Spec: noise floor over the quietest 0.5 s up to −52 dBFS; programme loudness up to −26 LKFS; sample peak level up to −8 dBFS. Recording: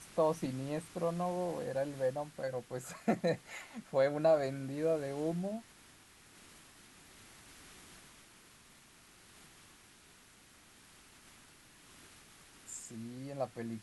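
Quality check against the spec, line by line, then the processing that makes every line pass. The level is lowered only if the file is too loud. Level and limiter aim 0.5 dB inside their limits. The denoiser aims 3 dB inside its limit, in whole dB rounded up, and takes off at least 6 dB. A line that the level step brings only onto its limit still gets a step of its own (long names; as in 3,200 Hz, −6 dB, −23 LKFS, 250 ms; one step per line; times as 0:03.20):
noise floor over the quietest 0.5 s −61 dBFS: in spec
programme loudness −36.0 LKFS: in spec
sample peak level −18.5 dBFS: in spec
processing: no processing needed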